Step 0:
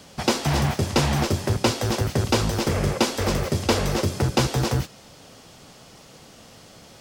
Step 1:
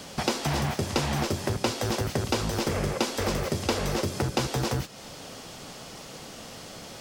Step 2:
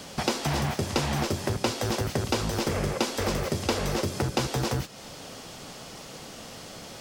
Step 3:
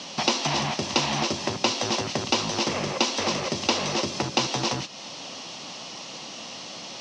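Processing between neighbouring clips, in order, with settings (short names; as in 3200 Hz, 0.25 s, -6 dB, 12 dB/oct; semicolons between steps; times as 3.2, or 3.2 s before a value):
bell 85 Hz -4 dB 1.8 oct; compressor 2.5:1, threshold -34 dBFS, peak gain reduction 12.5 dB; gain +5.5 dB
nothing audible
speaker cabinet 200–6300 Hz, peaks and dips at 440 Hz -7 dB, 1000 Hz +4 dB, 1500 Hz -6 dB, 2800 Hz +6 dB, 4000 Hz +5 dB, 5800 Hz +7 dB; gain +3 dB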